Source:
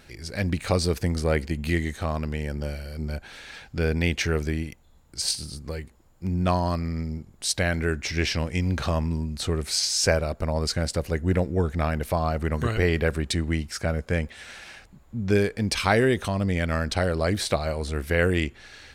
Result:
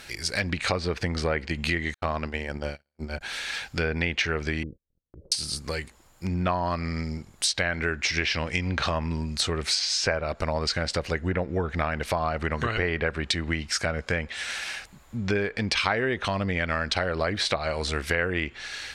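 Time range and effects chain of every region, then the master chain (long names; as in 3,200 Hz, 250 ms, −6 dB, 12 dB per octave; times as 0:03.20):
0:01.94–0:03.21: low-pass filter 2,500 Hz 6 dB per octave + mains-hum notches 50/100/150/200/250 Hz + noise gate −31 dBFS, range −53 dB
0:04.63–0:05.32: Butterworth low-pass 550 Hz 72 dB per octave + noise gate −52 dBFS, range −32 dB
whole clip: treble cut that deepens with the level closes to 2,100 Hz, closed at −19 dBFS; tilt shelving filter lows −6.5 dB, about 700 Hz; downward compressor 3 to 1, threshold −29 dBFS; level +5 dB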